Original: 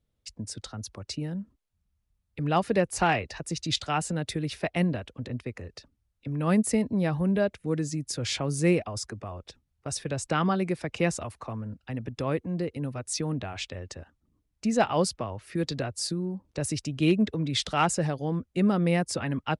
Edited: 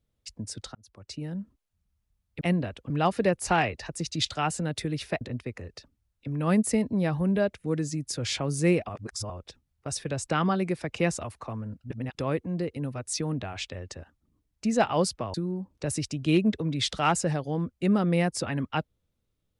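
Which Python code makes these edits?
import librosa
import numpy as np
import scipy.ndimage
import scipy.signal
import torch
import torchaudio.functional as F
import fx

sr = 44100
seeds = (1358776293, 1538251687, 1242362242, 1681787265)

y = fx.edit(x, sr, fx.fade_in_span(start_s=0.75, length_s=0.65),
    fx.move(start_s=4.72, length_s=0.49, to_s=2.41),
    fx.reverse_span(start_s=8.89, length_s=0.41),
    fx.reverse_span(start_s=11.84, length_s=0.31),
    fx.cut(start_s=15.34, length_s=0.74), tone=tone)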